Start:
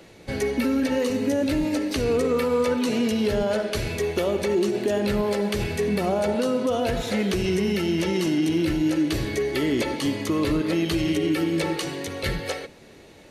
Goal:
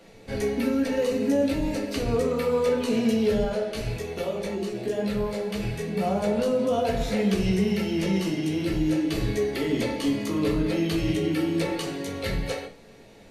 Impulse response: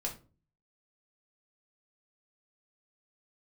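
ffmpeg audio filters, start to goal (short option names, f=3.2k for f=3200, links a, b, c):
-filter_complex "[0:a]asettb=1/sr,asplit=3[a][b][c];[a]atrim=end=3.494[d];[b]atrim=start=3.49:end=6.01,asetpts=PTS-STARTPTS,afade=t=in:d=0.004:c=qsin,afade=t=out:st=2.516:d=0.004:c=qsin,flanger=delay=15.5:depth=2.4:speed=1.9[e];[c]atrim=start=6.006[f];[d][e]acrossfade=d=0.004:c1=hsin:c2=qsin[g];[g][f]acrossfade=d=0.004:c1=qsin:c2=hsin[h];[1:a]atrim=start_sample=2205,atrim=end_sample=6174,asetrate=42336,aresample=44100[i];[h][i]afir=irnorm=-1:irlink=0,volume=-4dB"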